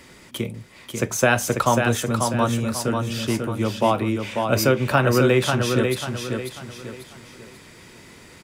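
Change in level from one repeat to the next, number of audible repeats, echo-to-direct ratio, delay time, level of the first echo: -9.0 dB, 4, -4.5 dB, 542 ms, -5.0 dB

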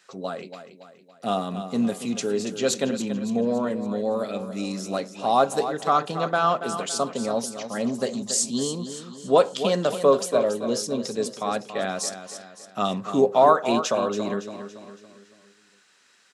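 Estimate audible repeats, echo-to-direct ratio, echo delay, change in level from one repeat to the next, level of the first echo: 4, -9.5 dB, 281 ms, -6.5 dB, -10.5 dB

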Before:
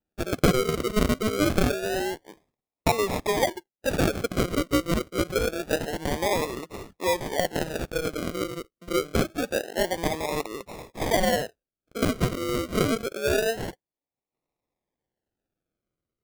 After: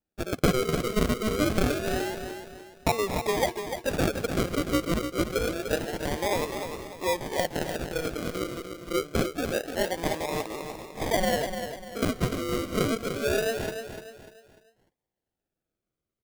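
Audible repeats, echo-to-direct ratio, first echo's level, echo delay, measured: 4, -7.5 dB, -8.0 dB, 297 ms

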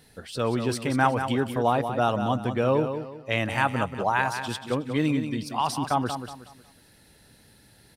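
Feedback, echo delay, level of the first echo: 33%, 184 ms, -8.5 dB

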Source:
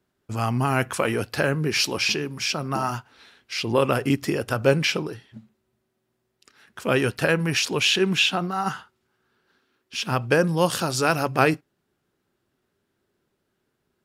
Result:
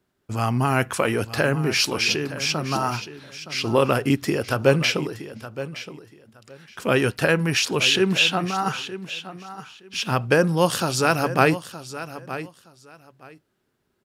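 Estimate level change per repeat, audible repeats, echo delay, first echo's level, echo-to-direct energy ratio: -14.5 dB, 2, 919 ms, -13.5 dB, -13.5 dB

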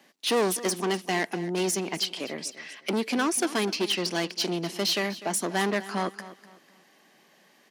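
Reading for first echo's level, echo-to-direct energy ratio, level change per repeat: -16.0 dB, -15.5 dB, -10.0 dB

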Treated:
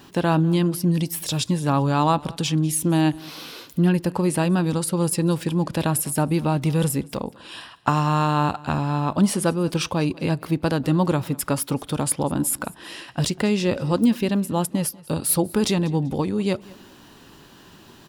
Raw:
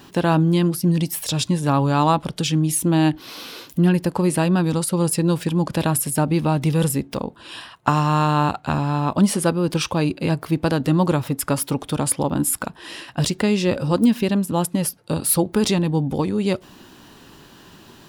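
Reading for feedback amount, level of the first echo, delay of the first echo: 32%, -22.5 dB, 194 ms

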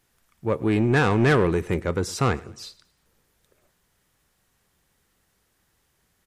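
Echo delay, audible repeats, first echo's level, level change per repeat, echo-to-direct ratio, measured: 108 ms, 2, -22.0 dB, -8.0 dB, -21.5 dB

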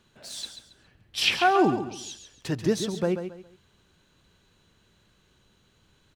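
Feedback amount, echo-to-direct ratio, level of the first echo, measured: 29%, -8.5 dB, -9.0 dB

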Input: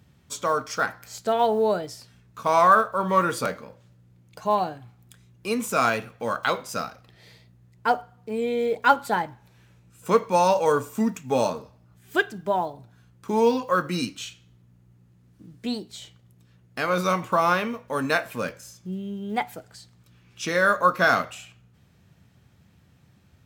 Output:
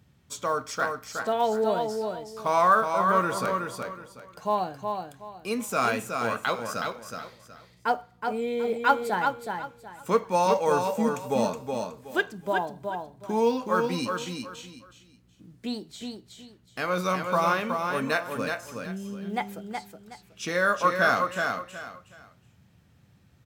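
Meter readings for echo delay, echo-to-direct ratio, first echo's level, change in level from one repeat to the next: 370 ms, -4.5 dB, -5.0 dB, -11.5 dB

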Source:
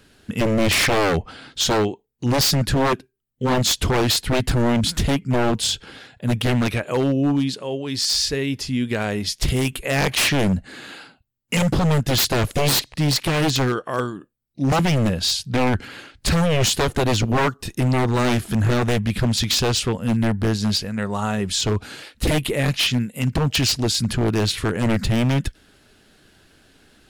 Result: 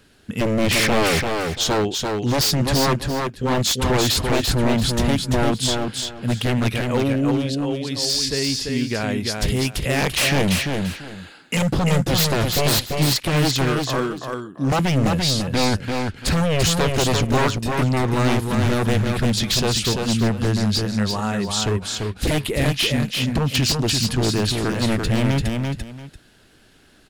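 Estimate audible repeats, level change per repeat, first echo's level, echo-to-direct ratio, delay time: 2, -13.0 dB, -4.0 dB, -4.0 dB, 341 ms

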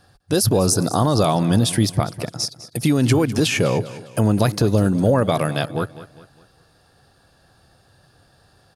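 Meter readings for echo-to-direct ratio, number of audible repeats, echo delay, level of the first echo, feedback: -15.0 dB, 3, 202 ms, -16.0 dB, 42%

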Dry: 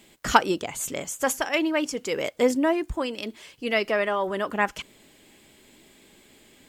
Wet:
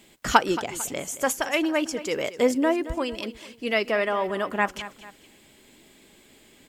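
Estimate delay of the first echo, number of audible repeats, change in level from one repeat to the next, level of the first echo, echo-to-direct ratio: 224 ms, 2, -7.5 dB, -15.0 dB, -14.5 dB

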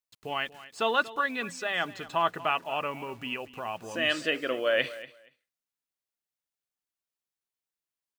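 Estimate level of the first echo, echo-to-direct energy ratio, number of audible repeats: -17.0 dB, -17.0 dB, 2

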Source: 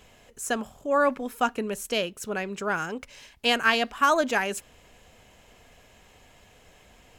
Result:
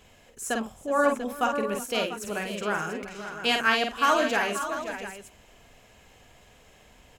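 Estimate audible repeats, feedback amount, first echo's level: 5, no regular repeats, -4.5 dB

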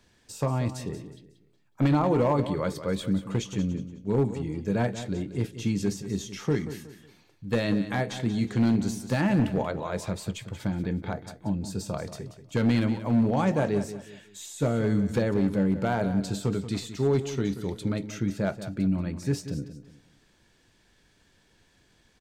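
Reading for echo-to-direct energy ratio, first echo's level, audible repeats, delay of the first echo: -11.5 dB, -12.0 dB, 3, 183 ms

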